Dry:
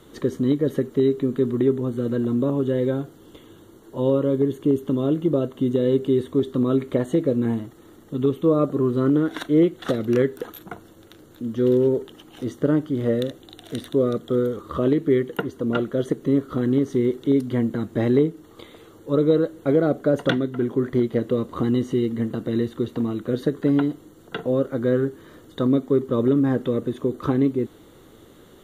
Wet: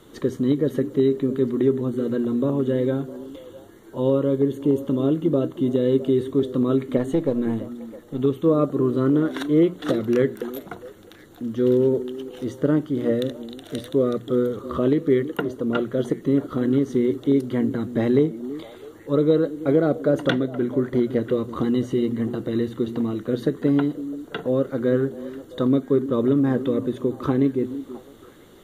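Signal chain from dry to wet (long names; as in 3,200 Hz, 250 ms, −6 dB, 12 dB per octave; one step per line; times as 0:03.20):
0:06.97–0:08.20: gain on one half-wave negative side −3 dB
mains-hum notches 60/120/180 Hz
echo through a band-pass that steps 330 ms, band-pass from 270 Hz, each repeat 1.4 octaves, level −11 dB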